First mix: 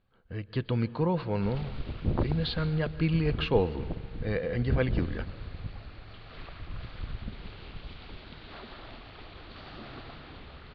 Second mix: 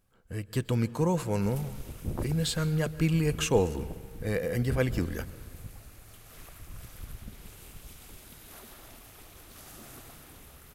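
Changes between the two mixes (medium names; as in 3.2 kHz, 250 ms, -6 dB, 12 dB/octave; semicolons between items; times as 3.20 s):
background -6.5 dB; master: remove Chebyshev low-pass 4.5 kHz, order 6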